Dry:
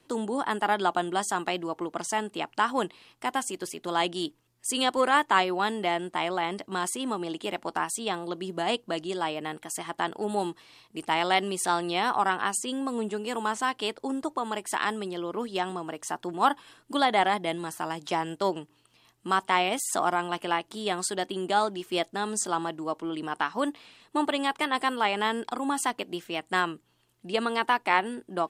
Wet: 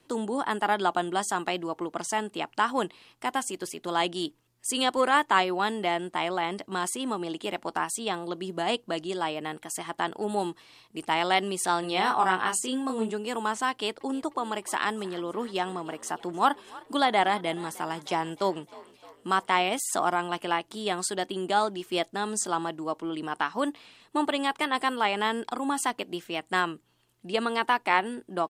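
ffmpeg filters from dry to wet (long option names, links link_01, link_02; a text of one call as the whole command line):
ffmpeg -i in.wav -filter_complex "[0:a]asplit=3[link_01][link_02][link_03];[link_01]afade=type=out:start_time=11.82:duration=0.02[link_04];[link_02]asplit=2[link_05][link_06];[link_06]adelay=27,volume=-4.5dB[link_07];[link_05][link_07]amix=inputs=2:normalize=0,afade=type=in:start_time=11.82:duration=0.02,afade=type=out:start_time=13.1:duration=0.02[link_08];[link_03]afade=type=in:start_time=13.1:duration=0.02[link_09];[link_04][link_08][link_09]amix=inputs=3:normalize=0,asettb=1/sr,asplit=3[link_10][link_11][link_12];[link_10]atrim=end=13.704[link_13];[link_11]atrim=start=13.7:end=19.62,asetpts=PTS-STARTPTS,afade=type=in:duration=0.004:curve=qsin,afade=type=out:start_time=5.916:duration=0.004:curve=qsin,asplit=6[link_14][link_15][link_16][link_17][link_18][link_19];[link_15]adelay=307,afreqshift=47,volume=-21dB[link_20];[link_16]adelay=614,afreqshift=94,volume=-25.2dB[link_21];[link_17]adelay=921,afreqshift=141,volume=-29.3dB[link_22];[link_18]adelay=1228,afreqshift=188,volume=-33.5dB[link_23];[link_19]adelay=1535,afreqshift=235,volume=-37.6dB[link_24];[link_14][link_20][link_21][link_22][link_23][link_24]amix=inputs=6:normalize=0,atrim=end_sample=261072[link_25];[link_12]atrim=start=19.616[link_26];[link_13][link_25]acrossfade=duration=0.004:curve1=hsin:curve2=qsin[link_27];[link_27][link_26]acrossfade=duration=0.004:curve1=qsin:curve2=hsin" out.wav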